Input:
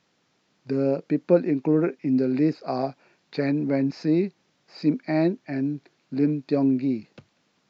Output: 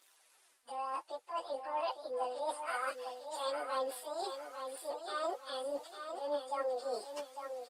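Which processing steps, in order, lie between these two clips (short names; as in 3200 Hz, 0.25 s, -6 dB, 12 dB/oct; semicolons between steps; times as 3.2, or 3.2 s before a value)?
pitch shift by moving bins +11.5 st; HPF 840 Hz 12 dB/oct; high shelf 3100 Hz +3.5 dB; reverse; compressor 16:1, threshold -42 dBFS, peak gain reduction 24.5 dB; reverse; phaser 0.63 Hz, delay 5 ms, feedback 41%; on a send: feedback echo 0.853 s, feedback 36%, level -7.5 dB; on the sum: gain +7 dB; Opus 32 kbps 48000 Hz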